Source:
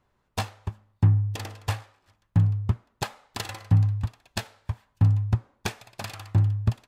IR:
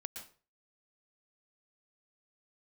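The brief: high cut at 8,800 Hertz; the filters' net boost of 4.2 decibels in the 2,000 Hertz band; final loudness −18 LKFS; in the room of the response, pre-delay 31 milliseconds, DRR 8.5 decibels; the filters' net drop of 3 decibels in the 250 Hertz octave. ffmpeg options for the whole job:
-filter_complex "[0:a]lowpass=8800,equalizer=frequency=250:width_type=o:gain=-5.5,equalizer=frequency=2000:width_type=o:gain=5.5,asplit=2[link_01][link_02];[1:a]atrim=start_sample=2205,adelay=31[link_03];[link_02][link_03]afir=irnorm=-1:irlink=0,volume=-6dB[link_04];[link_01][link_04]amix=inputs=2:normalize=0,volume=9dB"

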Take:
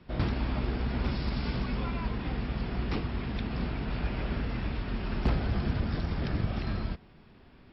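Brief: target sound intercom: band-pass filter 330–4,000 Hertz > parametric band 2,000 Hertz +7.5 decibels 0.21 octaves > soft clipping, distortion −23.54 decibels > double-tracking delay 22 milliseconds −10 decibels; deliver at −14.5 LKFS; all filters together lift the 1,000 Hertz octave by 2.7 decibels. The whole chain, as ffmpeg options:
ffmpeg -i in.wav -filter_complex "[0:a]highpass=330,lowpass=4000,equalizer=frequency=1000:width_type=o:gain=3.5,equalizer=frequency=2000:width_type=o:width=0.21:gain=7.5,asoftclip=threshold=-25.5dB,asplit=2[link_01][link_02];[link_02]adelay=22,volume=-10dB[link_03];[link_01][link_03]amix=inputs=2:normalize=0,volume=23.5dB" out.wav

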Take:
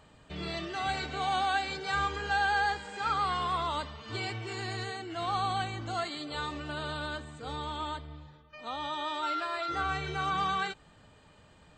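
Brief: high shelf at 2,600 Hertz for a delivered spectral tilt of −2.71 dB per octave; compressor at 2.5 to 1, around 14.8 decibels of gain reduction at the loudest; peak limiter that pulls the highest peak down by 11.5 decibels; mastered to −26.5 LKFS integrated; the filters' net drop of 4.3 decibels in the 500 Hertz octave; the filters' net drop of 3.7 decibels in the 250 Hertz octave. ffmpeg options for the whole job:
ffmpeg -i in.wav -af "equalizer=frequency=250:width_type=o:gain=-3.5,equalizer=frequency=500:width_type=o:gain=-5,highshelf=frequency=2600:gain=-3,acompressor=threshold=-50dB:ratio=2.5,volume=27dB,alimiter=limit=-18dB:level=0:latency=1" out.wav

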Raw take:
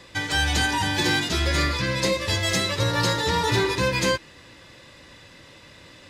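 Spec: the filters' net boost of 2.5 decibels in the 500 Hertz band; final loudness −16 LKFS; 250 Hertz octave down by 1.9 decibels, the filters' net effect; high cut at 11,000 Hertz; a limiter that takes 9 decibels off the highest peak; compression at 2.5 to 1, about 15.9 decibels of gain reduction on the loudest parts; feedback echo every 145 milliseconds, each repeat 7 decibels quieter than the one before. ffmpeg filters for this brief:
ffmpeg -i in.wav -af "lowpass=11000,equalizer=frequency=250:width_type=o:gain=-4.5,equalizer=frequency=500:width_type=o:gain=4,acompressor=threshold=-43dB:ratio=2.5,alimiter=level_in=10dB:limit=-24dB:level=0:latency=1,volume=-10dB,aecho=1:1:145|290|435|580|725:0.447|0.201|0.0905|0.0407|0.0183,volume=26dB" out.wav

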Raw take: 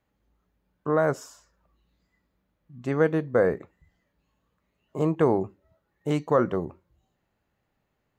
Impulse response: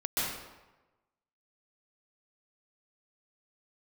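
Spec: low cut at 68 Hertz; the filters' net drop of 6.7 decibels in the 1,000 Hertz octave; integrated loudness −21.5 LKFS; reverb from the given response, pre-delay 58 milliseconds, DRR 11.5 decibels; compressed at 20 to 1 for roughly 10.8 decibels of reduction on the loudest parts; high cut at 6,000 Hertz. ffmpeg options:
-filter_complex "[0:a]highpass=68,lowpass=6000,equalizer=frequency=1000:width_type=o:gain=-9,acompressor=threshold=-28dB:ratio=20,asplit=2[link_01][link_02];[1:a]atrim=start_sample=2205,adelay=58[link_03];[link_02][link_03]afir=irnorm=-1:irlink=0,volume=-19.5dB[link_04];[link_01][link_04]amix=inputs=2:normalize=0,volume=14.5dB"

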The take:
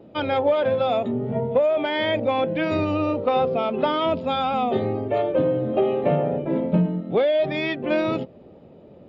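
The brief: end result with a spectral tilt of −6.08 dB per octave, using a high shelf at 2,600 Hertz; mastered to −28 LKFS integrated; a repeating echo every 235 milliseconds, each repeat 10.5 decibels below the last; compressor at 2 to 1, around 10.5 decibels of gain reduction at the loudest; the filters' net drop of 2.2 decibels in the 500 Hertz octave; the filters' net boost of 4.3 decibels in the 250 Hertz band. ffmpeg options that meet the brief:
ffmpeg -i in.wav -af "equalizer=frequency=250:width_type=o:gain=7,equalizer=frequency=500:width_type=o:gain=-4,highshelf=frequency=2600:gain=-5.5,acompressor=threshold=-32dB:ratio=2,aecho=1:1:235|470|705:0.299|0.0896|0.0269,volume=1.5dB" out.wav

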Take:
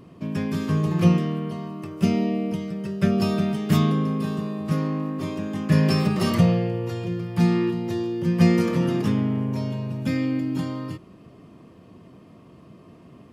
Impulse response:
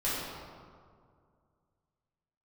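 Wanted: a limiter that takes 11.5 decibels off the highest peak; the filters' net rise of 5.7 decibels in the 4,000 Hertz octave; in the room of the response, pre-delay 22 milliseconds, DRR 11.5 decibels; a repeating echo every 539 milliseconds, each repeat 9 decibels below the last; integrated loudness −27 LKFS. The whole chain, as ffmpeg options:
-filter_complex "[0:a]equalizer=frequency=4000:width_type=o:gain=8,alimiter=limit=-17dB:level=0:latency=1,aecho=1:1:539|1078|1617|2156:0.355|0.124|0.0435|0.0152,asplit=2[link_01][link_02];[1:a]atrim=start_sample=2205,adelay=22[link_03];[link_02][link_03]afir=irnorm=-1:irlink=0,volume=-20dB[link_04];[link_01][link_04]amix=inputs=2:normalize=0"

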